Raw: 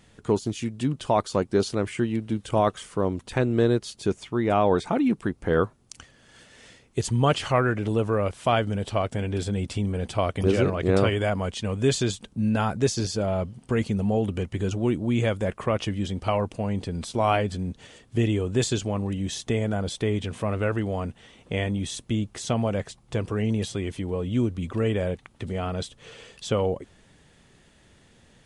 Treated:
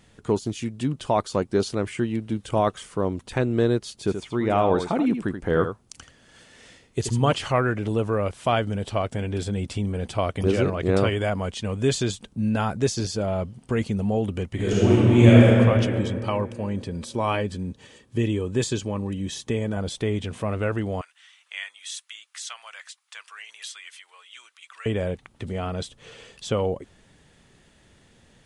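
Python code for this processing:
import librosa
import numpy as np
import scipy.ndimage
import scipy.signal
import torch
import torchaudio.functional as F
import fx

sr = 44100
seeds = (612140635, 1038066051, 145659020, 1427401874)

y = fx.echo_single(x, sr, ms=80, db=-8.5, at=(3.97, 7.33))
y = fx.reverb_throw(y, sr, start_s=14.54, length_s=0.9, rt60_s=2.8, drr_db=-9.0)
y = fx.notch_comb(y, sr, f0_hz=700.0, at=(15.99, 19.77))
y = fx.highpass(y, sr, hz=1300.0, slope=24, at=(21.01, 24.86))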